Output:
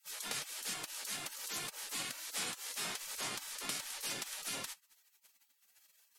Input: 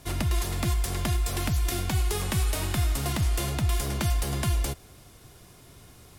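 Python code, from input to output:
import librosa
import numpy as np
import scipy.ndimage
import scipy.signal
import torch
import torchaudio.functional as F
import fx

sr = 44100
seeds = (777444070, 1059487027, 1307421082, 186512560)

y = fx.spec_gate(x, sr, threshold_db=-30, keep='weak')
y = fx.env_lowpass_down(y, sr, base_hz=2300.0, full_db=-23.5)
y = F.gain(torch.from_numpy(y), 1.0).numpy()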